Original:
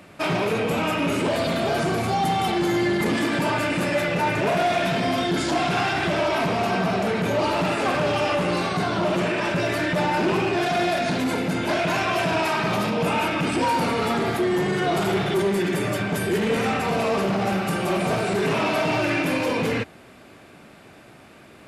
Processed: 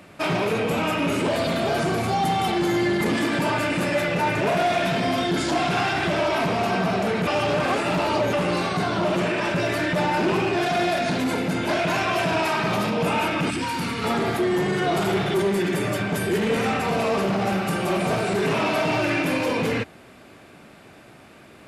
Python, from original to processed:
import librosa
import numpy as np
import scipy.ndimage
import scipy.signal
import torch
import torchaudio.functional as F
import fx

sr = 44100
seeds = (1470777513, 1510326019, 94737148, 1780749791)

y = fx.peak_eq(x, sr, hz=610.0, db=-13.5, octaves=1.3, at=(13.5, 14.04))
y = fx.edit(y, sr, fx.reverse_span(start_s=7.27, length_s=1.06), tone=tone)